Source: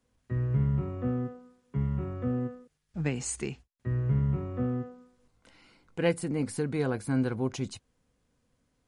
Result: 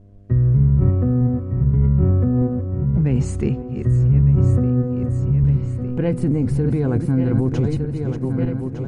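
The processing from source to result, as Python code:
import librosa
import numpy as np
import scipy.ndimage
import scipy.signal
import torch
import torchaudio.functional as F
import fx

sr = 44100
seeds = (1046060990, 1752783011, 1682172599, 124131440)

p1 = fx.reverse_delay_fb(x, sr, ms=604, feedback_pct=68, wet_db=-9.0)
p2 = fx.over_compress(p1, sr, threshold_db=-32.0, ratio=-0.5)
p3 = p1 + (p2 * 10.0 ** (1.5 / 20.0))
p4 = fx.dmg_buzz(p3, sr, base_hz=100.0, harmonics=7, level_db=-57.0, tilt_db=-4, odd_only=False)
p5 = fx.tilt_eq(p4, sr, slope=-4.0)
p6 = fx.echo_filtered(p5, sr, ms=531, feedback_pct=81, hz=4700.0, wet_db=-23.5)
y = p6 * 10.0 ** (-2.0 / 20.0)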